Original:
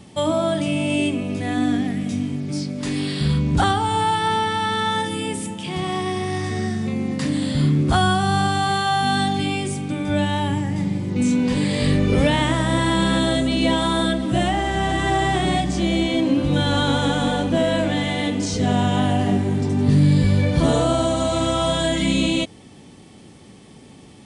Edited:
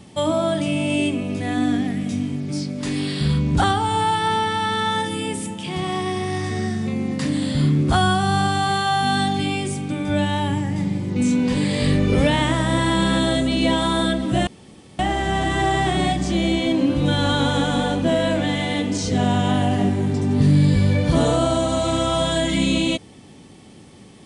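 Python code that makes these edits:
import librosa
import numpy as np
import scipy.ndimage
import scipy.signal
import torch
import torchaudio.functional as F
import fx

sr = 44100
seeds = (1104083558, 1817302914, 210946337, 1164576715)

y = fx.edit(x, sr, fx.insert_room_tone(at_s=14.47, length_s=0.52), tone=tone)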